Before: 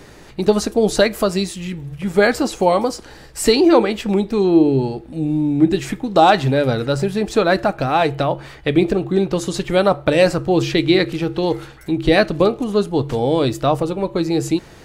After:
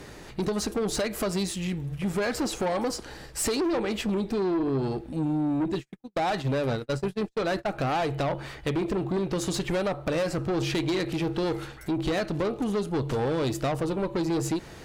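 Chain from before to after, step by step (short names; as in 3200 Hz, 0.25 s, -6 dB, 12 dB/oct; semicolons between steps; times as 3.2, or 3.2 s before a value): 5.64–7.73 gate -18 dBFS, range -54 dB; compressor 10:1, threshold -16 dBFS, peak gain reduction 9.5 dB; tube stage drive 21 dB, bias 0.25; gain -1.5 dB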